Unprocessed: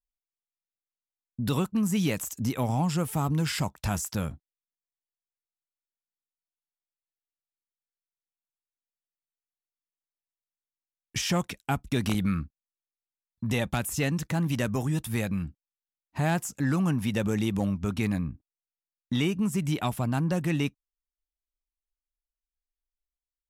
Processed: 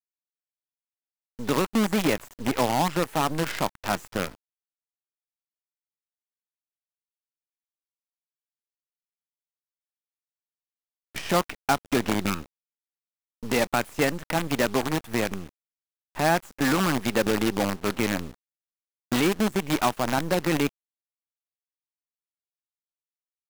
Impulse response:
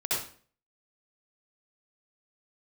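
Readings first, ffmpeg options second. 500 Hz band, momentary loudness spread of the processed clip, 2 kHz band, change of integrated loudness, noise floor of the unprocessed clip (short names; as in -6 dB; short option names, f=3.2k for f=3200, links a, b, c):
+7.5 dB, 8 LU, +6.5 dB, +3.0 dB, under -85 dBFS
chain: -filter_complex "[0:a]aeval=exprs='0.178*(cos(1*acos(clip(val(0)/0.178,-1,1)))-cos(1*PI/2))+0.0126*(cos(2*acos(clip(val(0)/0.178,-1,1)))-cos(2*PI/2))+0.00398*(cos(4*acos(clip(val(0)/0.178,-1,1)))-cos(4*PI/2))+0.00126*(cos(6*acos(clip(val(0)/0.178,-1,1)))-cos(6*PI/2))':c=same,acrossover=split=240 2500:gain=0.0891 1 0.1[a][b][c];[a][b][c]amix=inputs=3:normalize=0,acrusher=bits=6:dc=4:mix=0:aa=0.000001,volume=8dB"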